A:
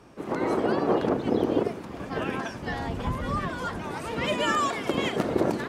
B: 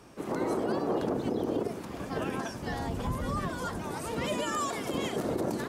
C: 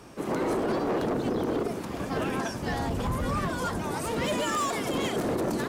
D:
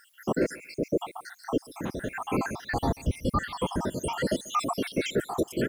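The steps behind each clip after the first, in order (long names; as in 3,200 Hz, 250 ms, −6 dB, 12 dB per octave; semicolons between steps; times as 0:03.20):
high-shelf EQ 5,500 Hz +9.5 dB; brickwall limiter −19 dBFS, peak gain reduction 8.5 dB; dynamic equaliser 2,400 Hz, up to −6 dB, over −44 dBFS, Q 0.72; level −1.5 dB
hard clipping −29 dBFS, distortion −12 dB; level +5 dB
time-frequency cells dropped at random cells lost 76%; background noise blue −73 dBFS; repeating echo 139 ms, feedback 18%, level −22 dB; level +5 dB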